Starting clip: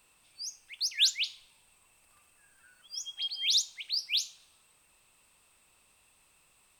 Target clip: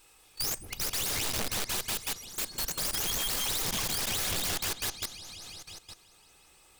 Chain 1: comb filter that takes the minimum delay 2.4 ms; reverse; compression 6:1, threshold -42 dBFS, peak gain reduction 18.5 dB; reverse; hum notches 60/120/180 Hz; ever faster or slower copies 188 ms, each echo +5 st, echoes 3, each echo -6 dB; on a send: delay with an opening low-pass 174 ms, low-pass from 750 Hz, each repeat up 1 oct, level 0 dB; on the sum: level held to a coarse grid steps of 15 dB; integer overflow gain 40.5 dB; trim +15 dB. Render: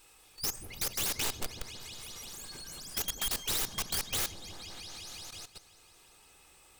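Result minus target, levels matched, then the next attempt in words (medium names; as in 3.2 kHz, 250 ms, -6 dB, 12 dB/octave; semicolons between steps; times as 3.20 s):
compression: peak gain reduction +7.5 dB
comb filter that takes the minimum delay 2.4 ms; reverse; compression 6:1, threshold -33 dBFS, peak gain reduction 11 dB; reverse; hum notches 60/120/180 Hz; ever faster or slower copies 188 ms, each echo +5 st, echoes 3, each echo -6 dB; on a send: delay with an opening low-pass 174 ms, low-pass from 750 Hz, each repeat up 1 oct, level 0 dB; on the sum: level held to a coarse grid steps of 15 dB; integer overflow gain 40.5 dB; trim +15 dB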